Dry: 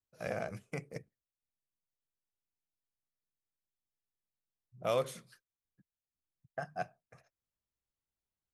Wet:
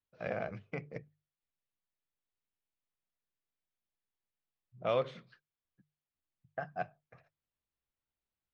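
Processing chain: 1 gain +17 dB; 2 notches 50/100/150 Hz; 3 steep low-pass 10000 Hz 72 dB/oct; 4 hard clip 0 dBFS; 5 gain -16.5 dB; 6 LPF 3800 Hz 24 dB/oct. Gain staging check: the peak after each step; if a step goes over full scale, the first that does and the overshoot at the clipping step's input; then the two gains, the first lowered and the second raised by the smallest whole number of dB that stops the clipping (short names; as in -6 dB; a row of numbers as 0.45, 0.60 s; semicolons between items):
-2.5, -2.5, -2.5, -2.5, -19.0, -19.5 dBFS; no overload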